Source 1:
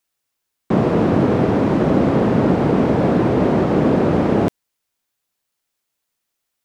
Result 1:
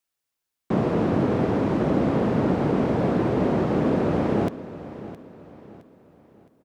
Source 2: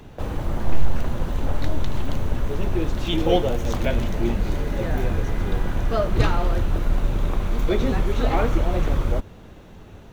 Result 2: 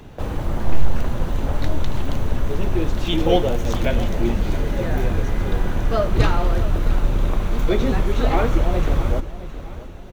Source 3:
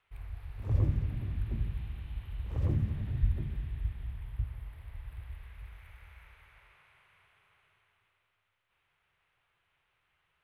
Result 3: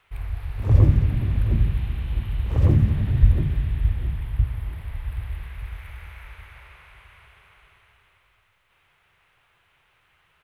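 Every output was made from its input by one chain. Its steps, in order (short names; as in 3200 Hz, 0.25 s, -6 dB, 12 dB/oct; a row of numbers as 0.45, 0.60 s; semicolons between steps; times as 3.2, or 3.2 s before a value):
feedback echo 0.665 s, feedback 39%, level -15 dB; match loudness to -23 LUFS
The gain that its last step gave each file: -6.5, +2.0, +12.5 dB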